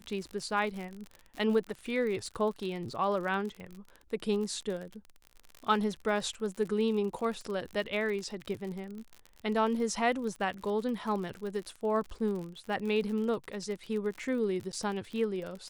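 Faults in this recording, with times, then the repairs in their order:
surface crackle 48 per second −37 dBFS
0:14.72–0:14.73: drop-out 9.1 ms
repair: click removal
repair the gap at 0:14.72, 9.1 ms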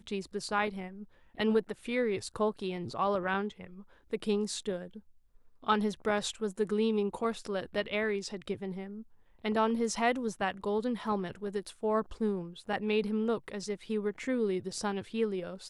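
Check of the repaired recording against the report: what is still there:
none of them is left

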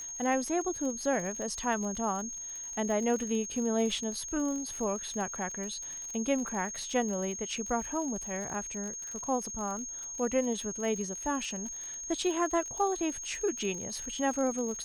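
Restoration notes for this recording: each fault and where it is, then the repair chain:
surface crackle 58 per second −37 dBFS
whistle 6,500 Hz −38 dBFS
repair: click removal
notch filter 6,500 Hz, Q 30

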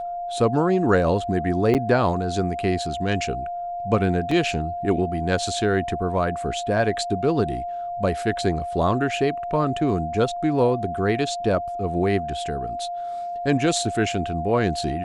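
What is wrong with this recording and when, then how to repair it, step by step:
whistle 700 Hz −27 dBFS
0:01.74–0:01.75: drop-out 8.5 ms
0:04.31: drop-out 3.9 ms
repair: notch filter 700 Hz, Q 30
repair the gap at 0:01.74, 8.5 ms
repair the gap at 0:04.31, 3.9 ms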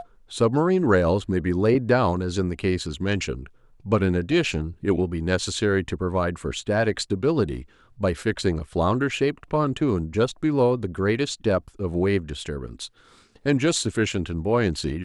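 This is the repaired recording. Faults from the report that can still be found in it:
none of them is left

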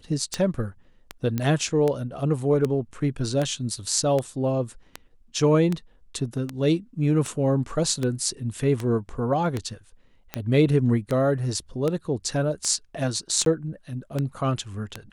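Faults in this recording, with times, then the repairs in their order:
scratch tick 78 rpm −13 dBFS
0:01.38: click −13 dBFS
0:13.45–0:13.46: drop-out 12 ms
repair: click removal
repair the gap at 0:13.45, 12 ms

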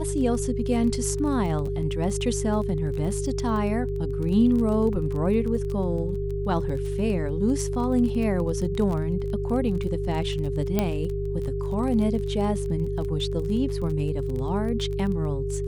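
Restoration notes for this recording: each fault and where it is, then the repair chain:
surface crackle 24 per second −31 dBFS
mains hum 50 Hz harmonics 3 −30 dBFS
whistle 400 Hz −29 dBFS
0:10.79: click −9 dBFS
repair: click removal
hum removal 50 Hz, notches 3
notch filter 400 Hz, Q 30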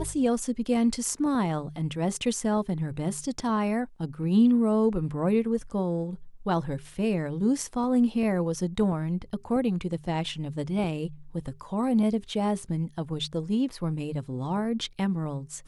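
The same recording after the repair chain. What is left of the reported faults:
none of them is left

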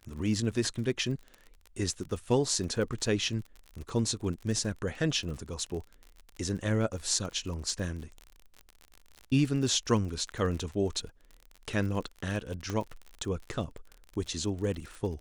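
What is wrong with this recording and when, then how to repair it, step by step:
surface crackle 39 per second −37 dBFS
0:12.70: click −20 dBFS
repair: click removal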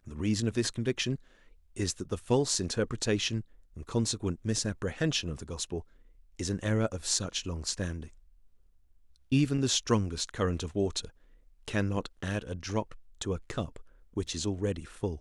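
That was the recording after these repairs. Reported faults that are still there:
0:12.70: click

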